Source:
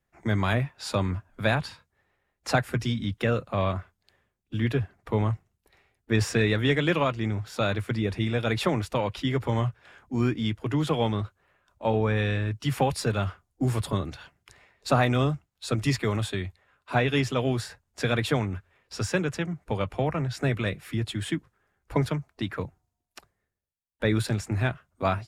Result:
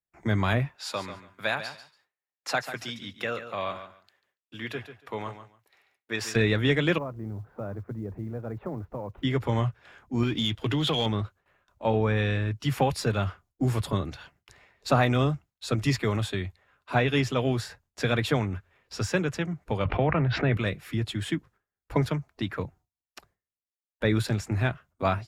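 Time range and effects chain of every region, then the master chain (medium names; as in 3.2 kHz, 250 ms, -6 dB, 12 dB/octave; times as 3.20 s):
0.76–6.36 s: high-pass 870 Hz 6 dB/octave + feedback delay 142 ms, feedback 18%, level -11 dB
6.98–9.23 s: Bessel low-pass 860 Hz, order 4 + companded quantiser 8-bit + compression 1.5:1, threshold -44 dBFS
10.23–11.06 s: peaking EQ 3.4 kHz +12.5 dB 0.63 oct + compression 4:1, threshold -25 dBFS + waveshaping leveller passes 1
19.85–20.57 s: low-pass 3.2 kHz 24 dB/octave + level flattener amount 70%
whole clip: gate with hold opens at -57 dBFS; peaking EQ 9 kHz -5 dB 0.35 oct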